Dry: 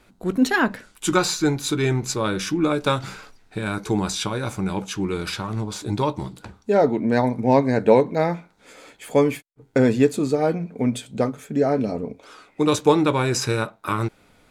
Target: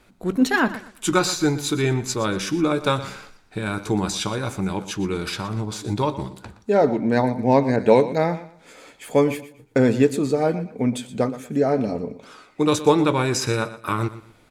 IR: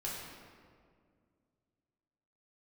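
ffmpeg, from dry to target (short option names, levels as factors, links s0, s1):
-filter_complex "[0:a]aecho=1:1:119|238|357:0.178|0.0462|0.012,asettb=1/sr,asplit=3[s0][s1][s2];[s0]atrim=end=7.764[s3];[s1]atrim=start=7.76:end=8.18,asetpts=PTS-STARTPTS,afade=t=in:d=0.004:c=qsin,afade=t=out:st=0.416:d=0.004:c=qsin,adynamicequalizer=threshold=0.0251:dfrequency=2200:dqfactor=0.7:tfrequency=2200:tqfactor=0.7:attack=5:release=100:ratio=0.375:range=2.5:mode=boostabove:tftype=highshelf[s4];[s2]atrim=start=8.176[s5];[s3][s4]acrossfade=d=0.004:c1=hsin:c2=qsin[s6];[s6][s5]acrossfade=d=0.004:c1=qsin:c2=hsin"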